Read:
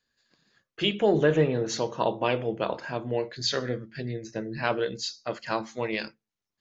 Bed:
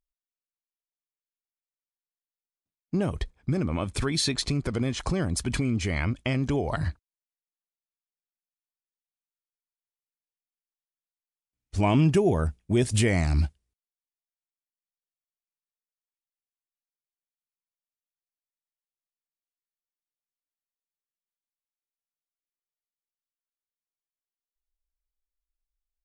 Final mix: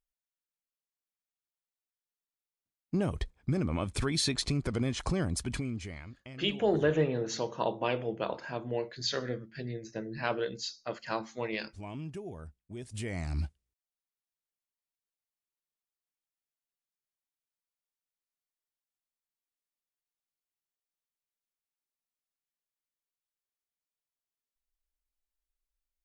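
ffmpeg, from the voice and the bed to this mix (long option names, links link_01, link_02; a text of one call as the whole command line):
ffmpeg -i stem1.wav -i stem2.wav -filter_complex "[0:a]adelay=5600,volume=-5dB[link_01];[1:a]volume=14dB,afade=type=out:start_time=5.21:duration=0.83:silence=0.149624,afade=type=in:start_time=12.85:duration=1.42:silence=0.133352[link_02];[link_01][link_02]amix=inputs=2:normalize=0" out.wav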